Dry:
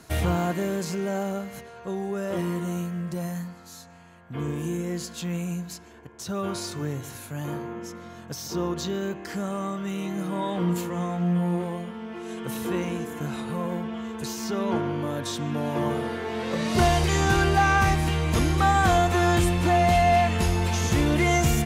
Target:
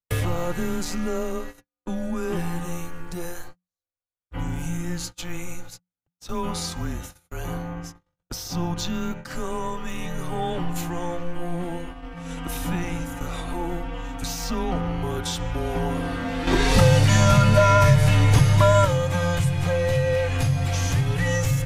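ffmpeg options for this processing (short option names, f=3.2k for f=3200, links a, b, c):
-filter_complex "[0:a]agate=range=-56dB:threshold=-36dB:ratio=16:detection=peak,asubboost=boost=6:cutoff=52,acompressor=threshold=-25dB:ratio=3,afreqshift=-180,asettb=1/sr,asplit=3[a][b][c];[a]atrim=end=16.474[d];[b]atrim=start=16.47:end=18.85,asetpts=PTS-STARTPTS,afade=t=in:d=0.004:c=qsin,afade=t=out:st=2.376:d=0.004:c=qsin,acontrast=70[e];[c]atrim=start=18.846[f];[d][e]acrossfade=d=0.004:c1=hsin:c2=qsin[g];[g][f]acrossfade=d=0.004:c1=qsin:c2=hsin,volume=4dB"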